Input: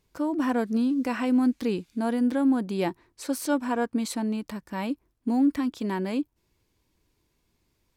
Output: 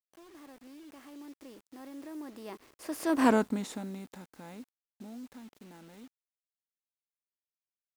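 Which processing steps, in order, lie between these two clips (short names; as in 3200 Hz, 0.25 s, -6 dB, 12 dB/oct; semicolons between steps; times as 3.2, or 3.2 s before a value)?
per-bin compression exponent 0.6; Doppler pass-by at 3.27, 42 m/s, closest 3.6 m; bit-crush 10-bit; gain +1.5 dB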